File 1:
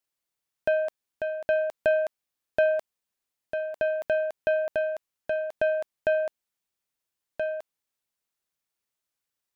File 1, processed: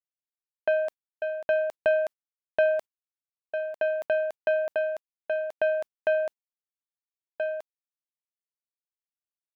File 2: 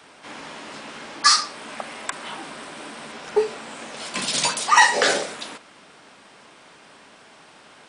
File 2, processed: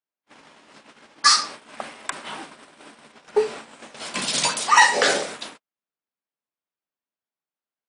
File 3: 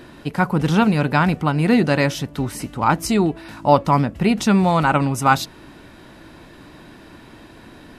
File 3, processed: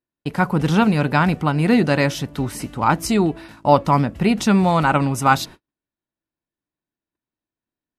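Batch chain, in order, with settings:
noise gate −35 dBFS, range −49 dB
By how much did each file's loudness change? 0.0, +0.5, 0.0 LU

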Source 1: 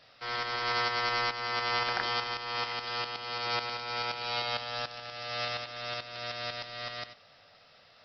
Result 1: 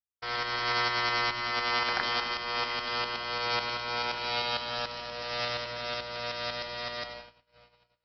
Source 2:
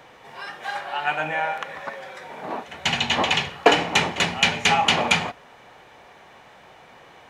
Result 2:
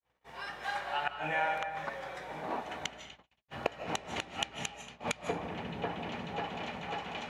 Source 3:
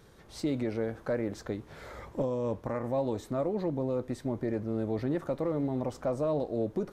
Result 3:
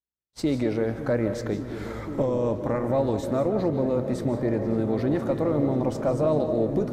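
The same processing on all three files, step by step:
echo whose low-pass opens from repeat to repeat 544 ms, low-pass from 200 Hz, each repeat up 1 octave, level −6 dB
gate with flip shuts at −11 dBFS, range −29 dB
mains hum 60 Hz, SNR 25 dB
comb and all-pass reverb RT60 0.95 s, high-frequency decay 0.55×, pre-delay 115 ms, DRR 8.5 dB
noise gate −44 dBFS, range −56 dB
normalise the peak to −12 dBFS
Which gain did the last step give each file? +1.5, −6.5, +6.0 decibels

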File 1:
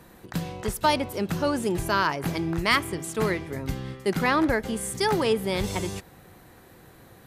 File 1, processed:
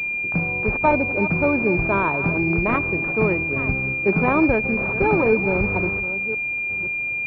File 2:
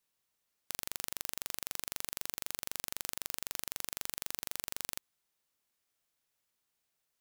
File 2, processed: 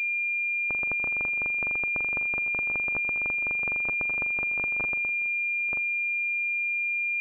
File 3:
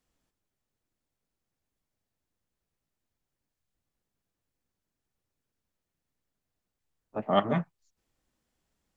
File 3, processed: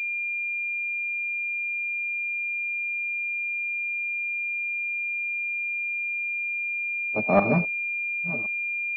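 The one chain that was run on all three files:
delay that plays each chunk backwards 529 ms, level −12.5 dB
switching amplifier with a slow clock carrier 2,400 Hz
level +5.5 dB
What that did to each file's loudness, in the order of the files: +6.0, +13.5, +3.0 LU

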